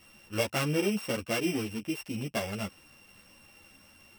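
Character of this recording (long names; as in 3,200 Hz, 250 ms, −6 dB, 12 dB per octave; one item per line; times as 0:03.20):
a buzz of ramps at a fixed pitch in blocks of 16 samples
a shimmering, thickened sound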